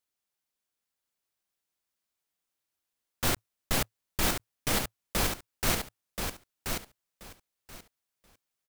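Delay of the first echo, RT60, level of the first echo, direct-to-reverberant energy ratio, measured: 1030 ms, no reverb, -5.5 dB, no reverb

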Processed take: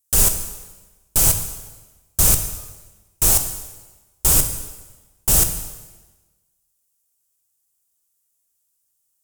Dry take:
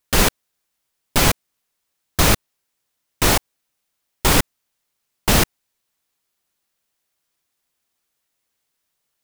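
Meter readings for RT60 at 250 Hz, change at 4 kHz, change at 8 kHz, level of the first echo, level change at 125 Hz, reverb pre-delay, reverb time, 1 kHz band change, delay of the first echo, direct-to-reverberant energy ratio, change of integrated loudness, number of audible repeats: 1.3 s, -6.5 dB, +6.5 dB, no echo, -3.0 dB, 7 ms, 1.2 s, -10.0 dB, no echo, 6.5 dB, +1.5 dB, no echo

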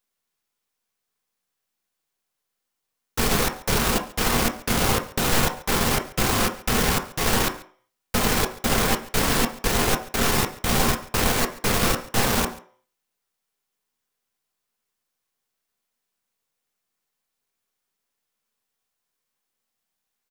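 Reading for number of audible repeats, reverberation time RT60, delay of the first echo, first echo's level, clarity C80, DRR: 1, 0.50 s, 139 ms, -20.5 dB, 15.5 dB, 3.5 dB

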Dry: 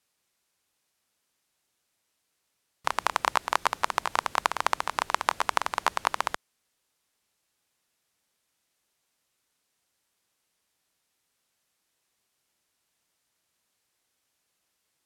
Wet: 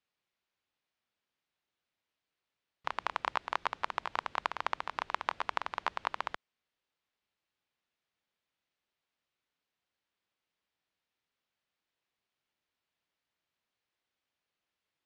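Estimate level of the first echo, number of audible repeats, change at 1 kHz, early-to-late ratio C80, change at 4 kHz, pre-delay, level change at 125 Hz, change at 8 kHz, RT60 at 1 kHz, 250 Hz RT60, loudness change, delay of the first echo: no echo, no echo, -8.0 dB, no reverb, -9.5 dB, no reverb, -8.5 dB, -20.5 dB, no reverb, no reverb, -8.5 dB, no echo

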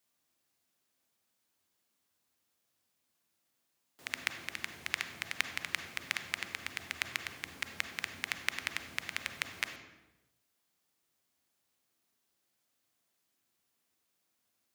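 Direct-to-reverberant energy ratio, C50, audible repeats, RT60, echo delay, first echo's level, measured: 5.5 dB, 7.0 dB, no echo, 1.0 s, no echo, no echo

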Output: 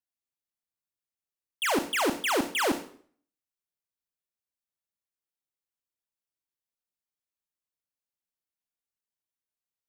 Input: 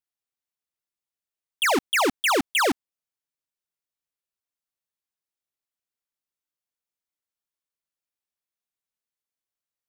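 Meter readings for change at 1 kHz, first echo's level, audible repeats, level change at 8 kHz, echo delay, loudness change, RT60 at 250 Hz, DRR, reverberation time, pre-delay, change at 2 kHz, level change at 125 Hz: -5.5 dB, no echo, no echo, -4.5 dB, no echo, -5.5 dB, 0.55 s, 7.5 dB, 0.50 s, 28 ms, -6.0 dB, -2.0 dB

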